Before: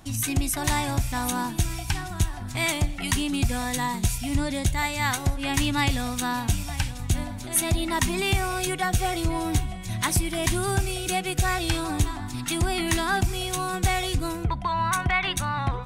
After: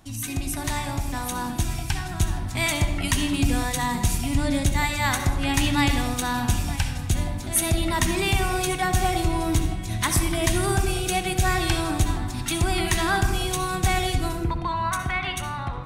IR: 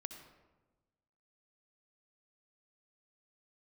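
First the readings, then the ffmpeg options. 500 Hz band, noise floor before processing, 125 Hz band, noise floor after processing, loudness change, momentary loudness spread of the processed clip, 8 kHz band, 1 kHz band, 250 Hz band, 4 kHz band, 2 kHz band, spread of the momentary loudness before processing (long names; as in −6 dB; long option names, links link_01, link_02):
+2.0 dB, −35 dBFS, +1.5 dB, −32 dBFS, +1.5 dB, 6 LU, +0.5 dB, +1.0 dB, +2.0 dB, +1.0 dB, +1.0 dB, 4 LU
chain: -filter_complex "[0:a]dynaudnorm=framelen=250:gausssize=13:maxgain=5.5dB[link_01];[1:a]atrim=start_sample=2205[link_02];[link_01][link_02]afir=irnorm=-1:irlink=0"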